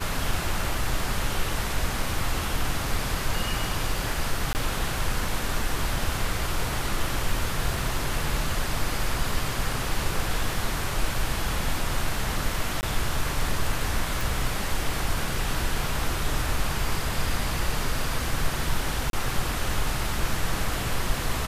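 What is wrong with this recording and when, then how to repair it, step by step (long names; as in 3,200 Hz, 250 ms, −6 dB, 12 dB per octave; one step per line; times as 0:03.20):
0:04.53–0:04.55: drop-out 19 ms
0:12.81–0:12.83: drop-out 19 ms
0:14.21: click
0:19.10–0:19.13: drop-out 32 ms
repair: click removal
repair the gap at 0:04.53, 19 ms
repair the gap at 0:12.81, 19 ms
repair the gap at 0:19.10, 32 ms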